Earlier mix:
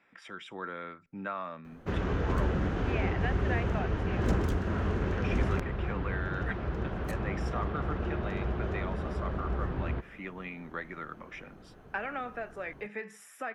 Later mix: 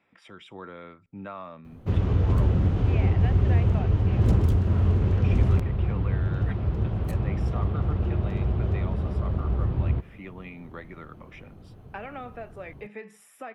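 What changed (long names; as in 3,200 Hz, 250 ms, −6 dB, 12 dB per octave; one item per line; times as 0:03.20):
background: add bass and treble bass +5 dB, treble +4 dB
master: add graphic EQ with 15 bands 100 Hz +10 dB, 1,600 Hz −8 dB, 6,300 Hz −6 dB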